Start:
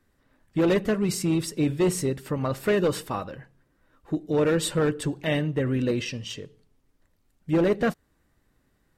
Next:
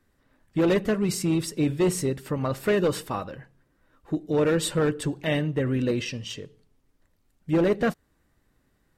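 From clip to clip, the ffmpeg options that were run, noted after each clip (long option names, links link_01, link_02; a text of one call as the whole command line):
ffmpeg -i in.wav -af anull out.wav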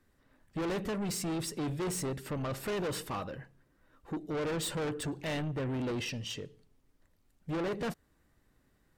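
ffmpeg -i in.wav -af "asoftclip=type=tanh:threshold=-29.5dB,volume=-2dB" out.wav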